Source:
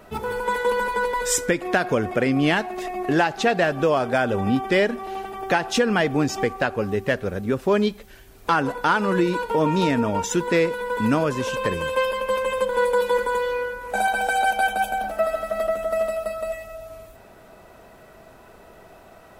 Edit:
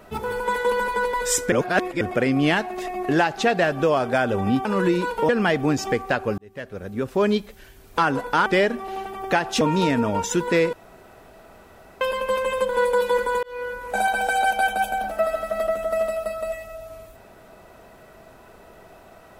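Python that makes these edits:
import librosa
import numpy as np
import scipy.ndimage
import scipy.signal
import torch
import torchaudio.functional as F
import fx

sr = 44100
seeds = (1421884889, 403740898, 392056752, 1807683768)

y = fx.edit(x, sr, fx.reverse_span(start_s=1.52, length_s=0.49),
    fx.swap(start_s=4.65, length_s=1.15, other_s=8.97, other_length_s=0.64),
    fx.fade_in_span(start_s=6.89, length_s=0.91),
    fx.room_tone_fill(start_s=10.73, length_s=1.28),
    fx.fade_in_span(start_s=13.43, length_s=0.29), tone=tone)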